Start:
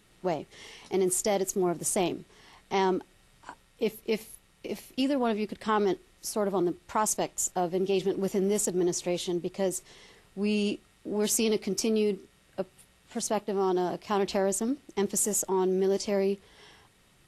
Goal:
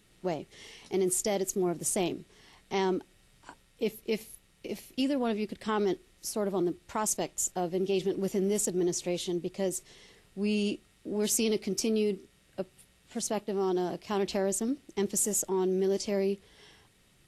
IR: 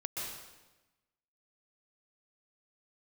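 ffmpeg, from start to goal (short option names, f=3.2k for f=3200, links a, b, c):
-af "equalizer=f=1k:t=o:w=1.4:g=-5,volume=-1dB"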